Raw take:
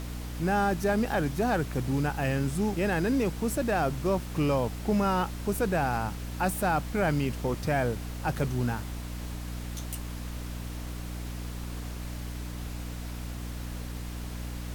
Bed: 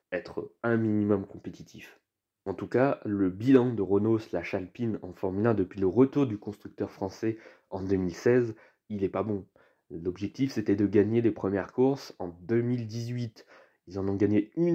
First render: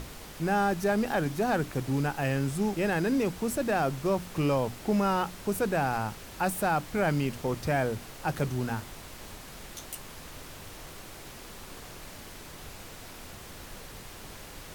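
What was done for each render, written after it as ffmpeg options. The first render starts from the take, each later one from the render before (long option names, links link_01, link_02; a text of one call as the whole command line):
ffmpeg -i in.wav -af "bandreject=frequency=60:width_type=h:width=6,bandreject=frequency=120:width_type=h:width=6,bandreject=frequency=180:width_type=h:width=6,bandreject=frequency=240:width_type=h:width=6,bandreject=frequency=300:width_type=h:width=6" out.wav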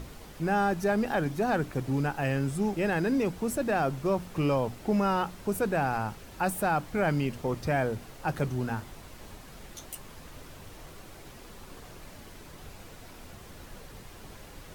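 ffmpeg -i in.wav -af "afftdn=noise_reduction=6:noise_floor=-46" out.wav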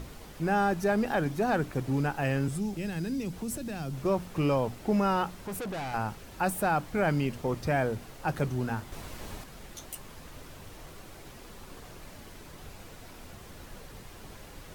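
ffmpeg -i in.wav -filter_complex "[0:a]asettb=1/sr,asplit=3[link_01][link_02][link_03];[link_01]atrim=end=2.484[link_04];[link_02]atrim=start=2.48:end=4.05,asetpts=PTS-STARTPTS,afade=type=in:duration=0.004:curve=qsin,afade=type=out:start_time=1.566:duration=0.004:curve=qsin,acrossover=split=240|3000[link_05][link_06][link_07];[link_06]acompressor=threshold=-41dB:ratio=6:attack=3.2:release=140:knee=2.83:detection=peak[link_08];[link_05][link_08][link_07]amix=inputs=3:normalize=0[link_09];[link_03]atrim=start=4.046[link_10];[link_04][link_09]acrossfade=duration=0.004:curve1=hsin:curve2=qsin[link_11];[link_11][link_10]acrossfade=duration=0.004:curve1=qsin:curve2=hsin,asettb=1/sr,asplit=3[link_12][link_13][link_14];[link_12]atrim=end=5.444[link_15];[link_13]atrim=start=5.44:end=5.94,asetpts=PTS-STARTPTS,afade=type=in:duration=0.004:curve=qsin,afade=type=out:start_time=0.496:duration=0.004:curve=qsin,asoftclip=type=hard:threshold=-33.5dB[link_16];[link_14]atrim=start=5.936[link_17];[link_15][link_16]acrossfade=duration=0.004:curve1=hsin:curve2=qsin[link_18];[link_18][link_17]acrossfade=duration=0.004:curve1=qsin:curve2=hsin,asettb=1/sr,asplit=3[link_19][link_20][link_21];[link_19]atrim=end=8.924[link_22];[link_20]atrim=start=8.92:end=9.44,asetpts=PTS-STARTPTS,afade=type=in:duration=0.004:curve=qsin,afade=type=out:start_time=0.516:duration=0.004:curve=qsin,acontrast=28[link_23];[link_21]atrim=start=9.436[link_24];[link_22][link_23]acrossfade=duration=0.004:curve1=hsin:curve2=qsin[link_25];[link_25][link_24]acrossfade=duration=0.004:curve1=qsin:curve2=hsin" out.wav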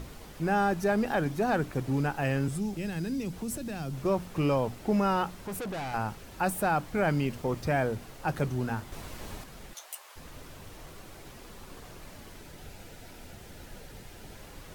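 ffmpeg -i in.wav -filter_complex "[0:a]asettb=1/sr,asplit=3[link_01][link_02][link_03];[link_01]atrim=end=7.154[link_04];[link_02]atrim=start=7.15:end=7.86,asetpts=PTS-STARTPTS,afade=type=in:duration=0.004:curve=qsin,afade=type=out:start_time=0.706:duration=0.004:curve=qsin,aeval=exprs='val(0)*gte(abs(val(0)),0.00299)':channel_layout=same[link_05];[link_03]atrim=start=7.856[link_06];[link_04][link_05]acrossfade=duration=0.004:curve1=hsin:curve2=qsin[link_07];[link_07][link_06]acrossfade=duration=0.004:curve1=qsin:curve2=hsin,asplit=3[link_08][link_09][link_10];[link_08]afade=type=out:start_time=9.73:duration=0.02[link_11];[link_09]highpass=frequency=610:width=0.5412,highpass=frequency=610:width=1.3066,afade=type=in:start_time=9.73:duration=0.02,afade=type=out:start_time=10.15:duration=0.02[link_12];[link_10]afade=type=in:start_time=10.15:duration=0.02[link_13];[link_11][link_12][link_13]amix=inputs=3:normalize=0,asettb=1/sr,asplit=3[link_14][link_15][link_16];[link_14]atrim=end=12.414[link_17];[link_15]atrim=start=12.41:end=14.39,asetpts=PTS-STARTPTS,afade=type=in:duration=0.004:curve=qsin,afade=type=out:start_time=1.976:duration=0.004:curve=qsin,bandreject=frequency=1100:width=5[link_18];[link_16]atrim=start=14.386[link_19];[link_17][link_18]acrossfade=duration=0.004:curve1=hsin:curve2=qsin[link_20];[link_20][link_19]acrossfade=duration=0.004:curve1=qsin:curve2=hsin" out.wav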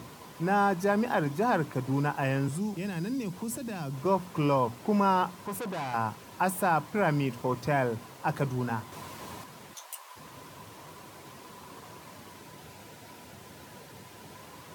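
ffmpeg -i in.wav -af "highpass=frequency=99:width=0.5412,highpass=frequency=99:width=1.3066,equalizer=frequency=1000:width=7.8:gain=12" out.wav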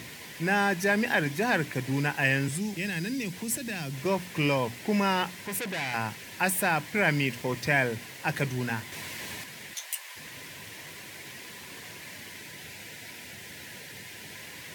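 ffmpeg -i in.wav -af "highshelf=frequency=1500:width_type=q:width=3:gain=7.5" out.wav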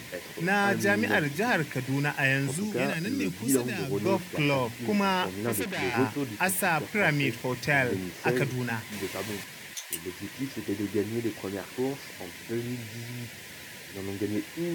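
ffmpeg -i in.wav -i bed.wav -filter_complex "[1:a]volume=-6dB[link_01];[0:a][link_01]amix=inputs=2:normalize=0" out.wav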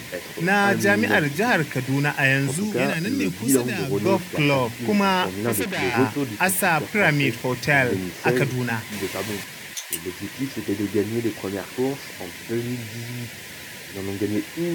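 ffmpeg -i in.wav -af "volume=6dB" out.wav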